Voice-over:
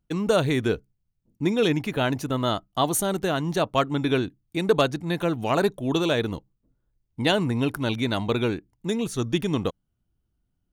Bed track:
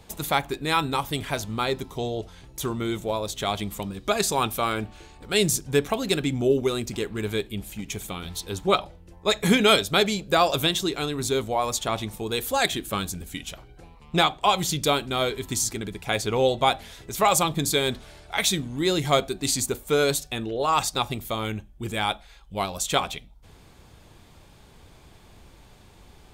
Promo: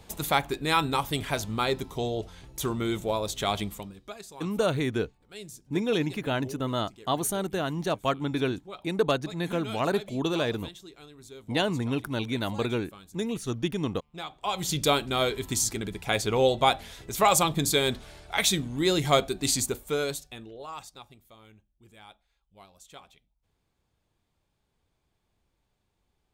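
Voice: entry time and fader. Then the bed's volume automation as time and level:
4.30 s, -4.5 dB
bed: 3.62 s -1 dB
4.23 s -21.5 dB
14.11 s -21.5 dB
14.76 s -1 dB
19.58 s -1 dB
21.22 s -25 dB

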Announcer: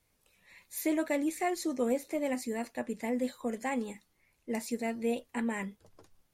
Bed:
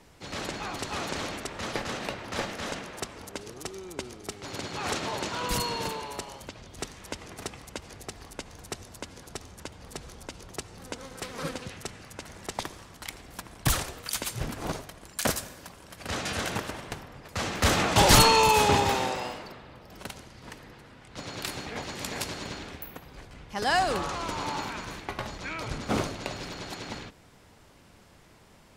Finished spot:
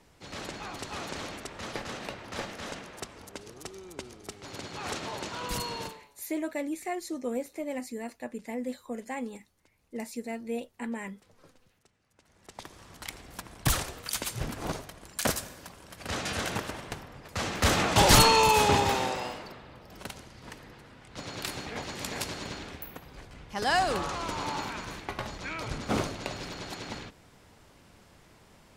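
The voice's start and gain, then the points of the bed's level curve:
5.45 s, -2.5 dB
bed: 5.83 s -4.5 dB
6.16 s -27.5 dB
12.03 s -27.5 dB
12.92 s -1 dB

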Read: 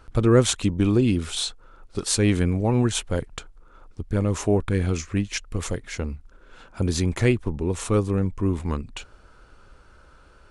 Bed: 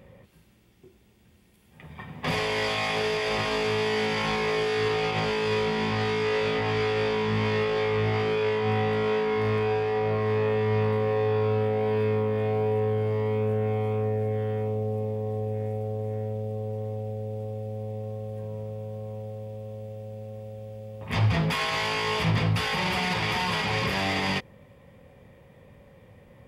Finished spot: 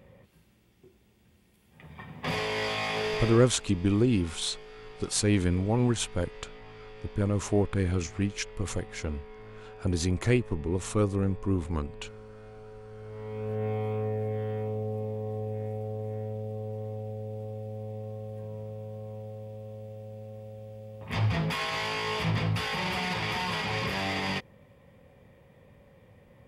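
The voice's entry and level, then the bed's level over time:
3.05 s, -4.5 dB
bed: 3.22 s -3.5 dB
3.56 s -22 dB
12.84 s -22 dB
13.64 s -4 dB

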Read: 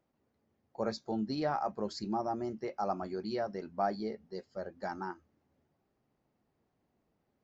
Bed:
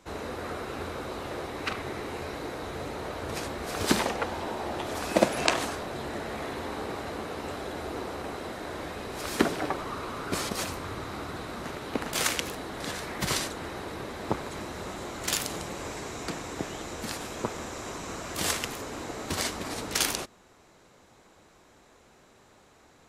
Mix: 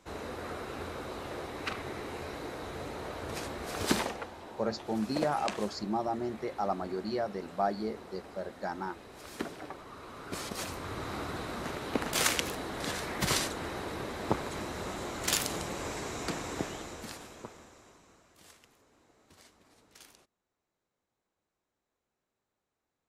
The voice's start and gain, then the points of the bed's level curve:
3.80 s, +2.0 dB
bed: 3.99 s -4 dB
4.33 s -13 dB
9.86 s -13 dB
11.11 s -0.5 dB
16.58 s -0.5 dB
18.42 s -28.5 dB

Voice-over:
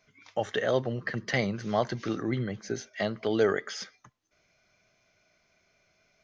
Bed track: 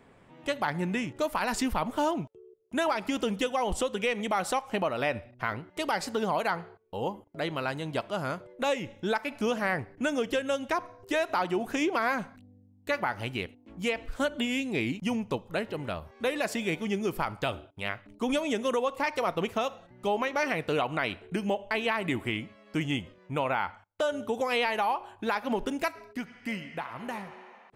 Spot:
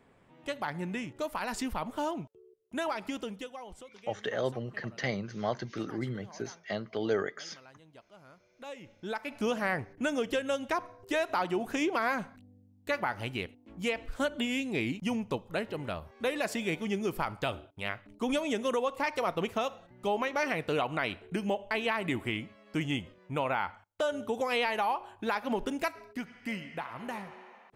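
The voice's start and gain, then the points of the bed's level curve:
3.70 s, -5.0 dB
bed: 3.08 s -5.5 dB
3.98 s -23.5 dB
8.29 s -23.5 dB
9.41 s -2 dB

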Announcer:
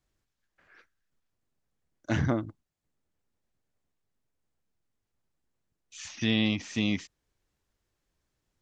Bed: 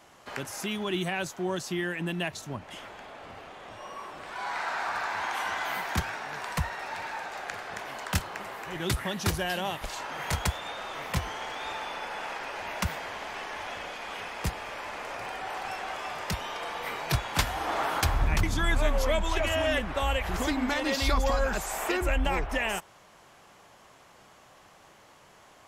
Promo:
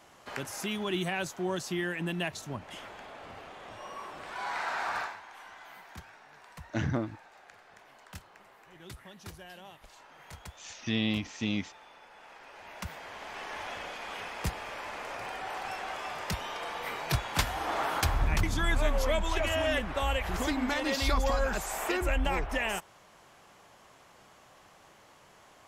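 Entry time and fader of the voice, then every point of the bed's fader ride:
4.65 s, -3.5 dB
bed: 5.01 s -1.5 dB
5.22 s -18 dB
12.12 s -18 dB
13.54 s -2 dB

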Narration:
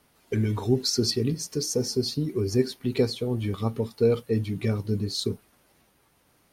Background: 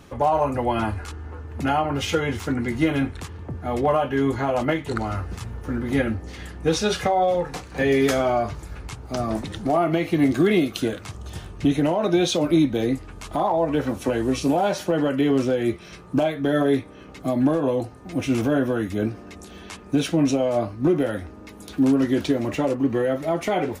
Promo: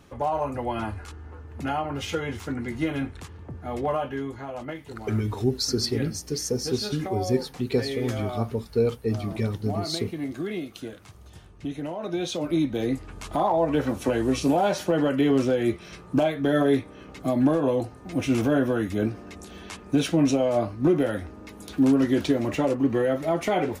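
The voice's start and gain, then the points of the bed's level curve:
4.75 s, -1.0 dB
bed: 4.08 s -6 dB
4.3 s -12.5 dB
11.75 s -12.5 dB
13.15 s -1 dB

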